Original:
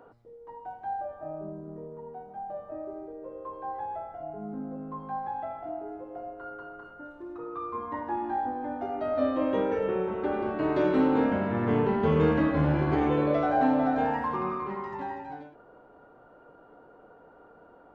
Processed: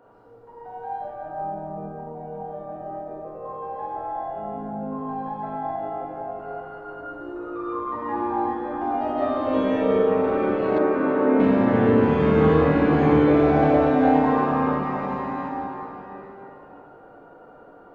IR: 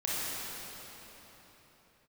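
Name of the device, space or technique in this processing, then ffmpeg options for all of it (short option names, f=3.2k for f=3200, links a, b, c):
cathedral: -filter_complex "[1:a]atrim=start_sample=2205[a];[0:a][a]afir=irnorm=-1:irlink=0,asettb=1/sr,asplit=3[b][c][d];[b]atrim=end=10.784[e];[c]atrim=start=10.78:end=11.4,asetpts=PTS-STARTPTS,afade=t=in:d=0.004:c=qsin,afade=t=out:st=0.616:d=0.004:c=qsin,acrossover=split=180 2100:gain=0.224 1 0.126[f][g][h];[f][g][h]amix=inputs=3:normalize=0[i];[d]atrim=start=11.396[j];[e][i]acrossfade=d=0.004:c1=hsin:c2=qsin[k];[k][j]acrossfade=d=0.004:c1=qsin:c2=hsin,volume=-1.5dB"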